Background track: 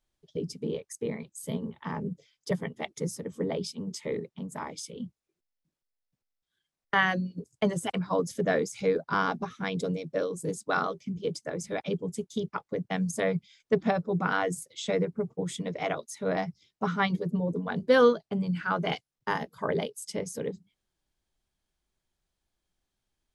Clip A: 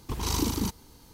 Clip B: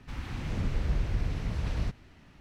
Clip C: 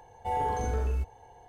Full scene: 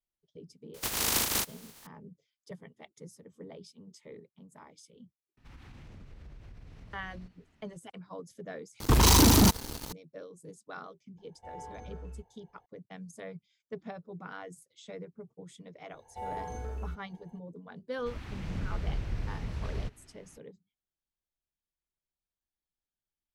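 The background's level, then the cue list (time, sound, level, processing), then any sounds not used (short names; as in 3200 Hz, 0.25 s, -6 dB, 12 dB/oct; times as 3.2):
background track -16 dB
0.74 add A -1 dB + spectral contrast lowered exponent 0.2
5.37 add B -11.5 dB + compressor, threshold -34 dBFS
8.8 replace with A -1.5 dB + sample leveller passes 5
11.18 add C -15.5 dB + air absorption 85 m
15.91 add C -9 dB
17.98 add B -4.5 dB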